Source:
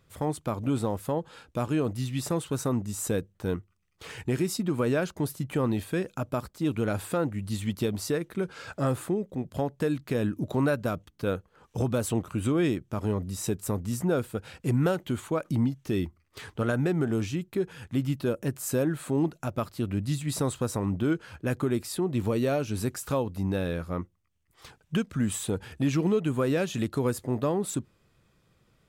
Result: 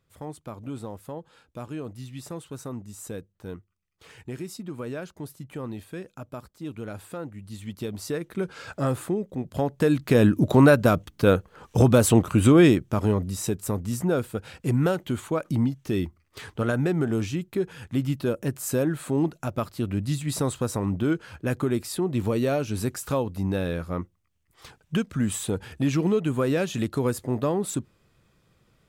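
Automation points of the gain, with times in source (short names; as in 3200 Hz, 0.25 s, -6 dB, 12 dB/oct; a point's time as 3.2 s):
7.51 s -8 dB
8.41 s +1.5 dB
9.44 s +1.5 dB
10.2 s +10 dB
12.6 s +10 dB
13.51 s +2 dB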